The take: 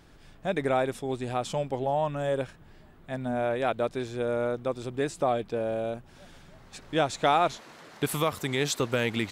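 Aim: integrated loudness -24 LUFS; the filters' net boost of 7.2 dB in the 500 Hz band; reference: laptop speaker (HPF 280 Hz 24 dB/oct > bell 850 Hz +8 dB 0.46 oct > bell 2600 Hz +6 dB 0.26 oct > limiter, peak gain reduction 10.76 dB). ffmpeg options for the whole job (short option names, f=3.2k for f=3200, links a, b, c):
-af "highpass=f=280:w=0.5412,highpass=f=280:w=1.3066,equalizer=f=500:t=o:g=7.5,equalizer=f=850:t=o:w=0.46:g=8,equalizer=f=2.6k:t=o:w=0.26:g=6,volume=3dB,alimiter=limit=-13dB:level=0:latency=1"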